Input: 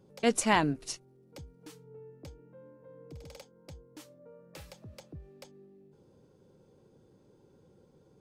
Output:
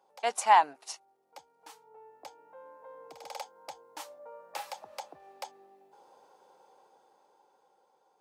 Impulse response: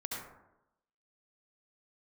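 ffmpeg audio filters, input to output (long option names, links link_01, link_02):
-af "highpass=frequency=820:width_type=q:width=4.9,dynaudnorm=framelen=260:gausssize=13:maxgain=11dB,volume=-3.5dB"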